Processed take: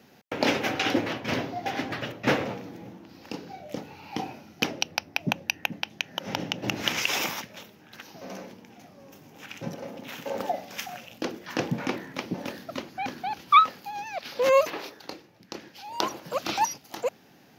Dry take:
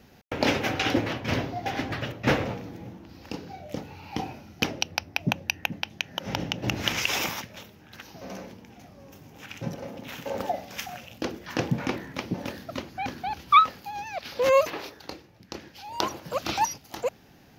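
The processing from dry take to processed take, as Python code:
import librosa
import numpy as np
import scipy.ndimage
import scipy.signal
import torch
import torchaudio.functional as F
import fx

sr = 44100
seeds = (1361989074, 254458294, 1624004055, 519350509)

y = scipy.signal.sosfilt(scipy.signal.butter(2, 160.0, 'highpass', fs=sr, output='sos'), x)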